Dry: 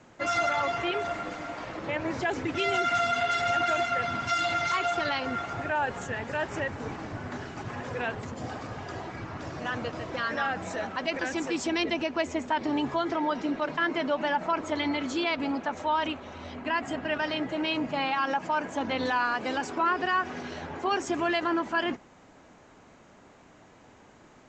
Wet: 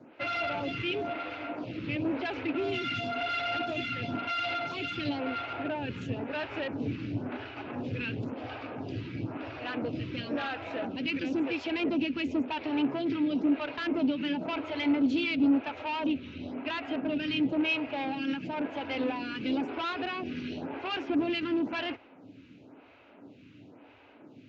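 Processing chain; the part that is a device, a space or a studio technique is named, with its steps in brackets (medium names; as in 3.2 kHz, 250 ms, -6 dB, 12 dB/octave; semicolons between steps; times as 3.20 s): vibe pedal into a guitar amplifier (lamp-driven phase shifter 0.97 Hz; valve stage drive 31 dB, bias 0.4; cabinet simulation 86–4200 Hz, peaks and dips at 110 Hz +9 dB, 280 Hz +10 dB, 780 Hz -3 dB, 1.1 kHz -7 dB, 1.8 kHz -6 dB, 2.6 kHz +8 dB); trim +3.5 dB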